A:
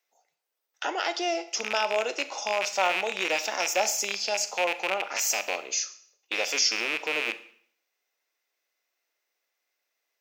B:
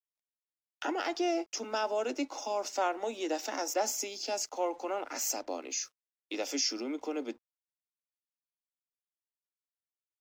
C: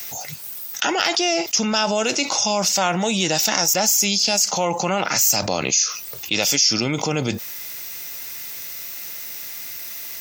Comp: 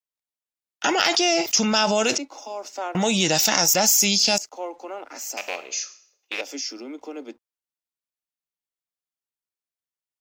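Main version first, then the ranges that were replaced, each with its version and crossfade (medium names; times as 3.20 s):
B
0.84–2.18 s: from C
2.95–4.38 s: from C
5.37–6.41 s: from A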